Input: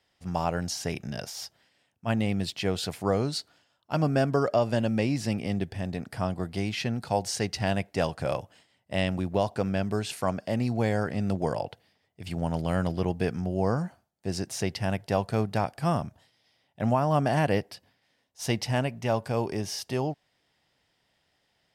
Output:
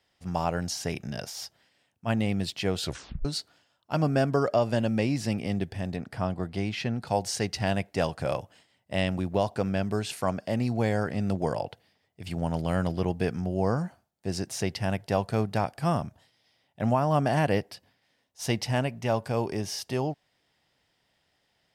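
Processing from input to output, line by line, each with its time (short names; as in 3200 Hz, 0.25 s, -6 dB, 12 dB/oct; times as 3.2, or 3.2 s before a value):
2.83 tape stop 0.42 s
5.96–7.07 high shelf 6300 Hz -9.5 dB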